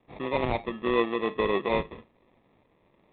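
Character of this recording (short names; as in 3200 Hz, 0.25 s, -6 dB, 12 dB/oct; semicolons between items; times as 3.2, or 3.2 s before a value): aliases and images of a low sample rate 1500 Hz, jitter 0%; tremolo saw up 1.9 Hz, depth 35%; G.726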